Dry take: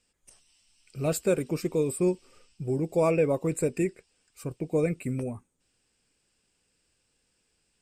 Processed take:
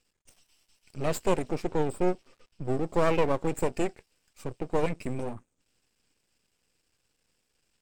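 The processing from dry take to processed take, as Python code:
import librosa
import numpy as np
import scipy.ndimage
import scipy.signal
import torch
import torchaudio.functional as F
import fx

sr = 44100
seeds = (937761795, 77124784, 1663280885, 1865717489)

y = scipy.signal.sosfilt(scipy.signal.butter(4, 8100.0, 'lowpass', fs=sr, output='sos'), x)
y = np.maximum(y, 0.0)
y = fx.high_shelf(y, sr, hz=5900.0, db=-8.5, at=(1.55, 2.65))
y = y * librosa.db_to_amplitude(3.0)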